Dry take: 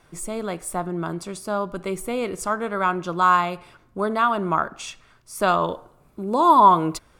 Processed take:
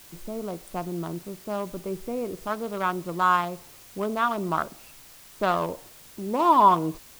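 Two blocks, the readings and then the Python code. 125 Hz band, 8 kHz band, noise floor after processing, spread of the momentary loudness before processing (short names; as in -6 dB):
-3.5 dB, -9.0 dB, -49 dBFS, 17 LU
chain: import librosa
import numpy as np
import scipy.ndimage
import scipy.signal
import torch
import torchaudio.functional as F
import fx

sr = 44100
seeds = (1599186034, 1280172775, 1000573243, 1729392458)

p1 = fx.wiener(x, sr, points=25)
p2 = fx.quant_dither(p1, sr, seeds[0], bits=6, dither='triangular')
p3 = p1 + F.gain(torch.from_numpy(p2), -7.0).numpy()
y = F.gain(torch.from_numpy(p3), -6.5).numpy()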